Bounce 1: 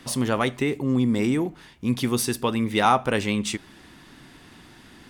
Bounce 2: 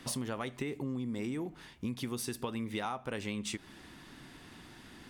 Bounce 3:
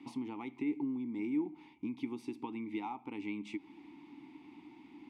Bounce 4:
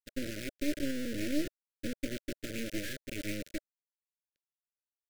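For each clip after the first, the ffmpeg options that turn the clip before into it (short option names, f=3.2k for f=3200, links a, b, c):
-af "acompressor=threshold=-29dB:ratio=12,volume=-4dB"
-filter_complex "[0:a]asplit=3[a][b][c];[a]bandpass=f=300:t=q:w=8,volume=0dB[d];[b]bandpass=f=870:t=q:w=8,volume=-6dB[e];[c]bandpass=f=2.24k:t=q:w=8,volume=-9dB[f];[d][e][f]amix=inputs=3:normalize=0,volume=8.5dB"
-af "acrusher=bits=4:dc=4:mix=0:aa=0.000001,agate=range=-33dB:threshold=-43dB:ratio=3:detection=peak,asuperstop=centerf=940:order=12:qfactor=1.1,volume=6dB"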